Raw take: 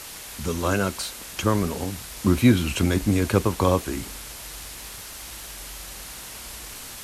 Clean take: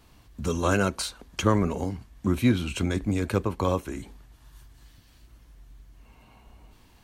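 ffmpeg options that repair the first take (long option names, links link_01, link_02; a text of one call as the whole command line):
ffmpeg -i in.wav -af "adeclick=threshold=4,afwtdn=0.014,asetnsamples=nb_out_samples=441:pad=0,asendcmd='2.04 volume volume -5dB',volume=0dB" out.wav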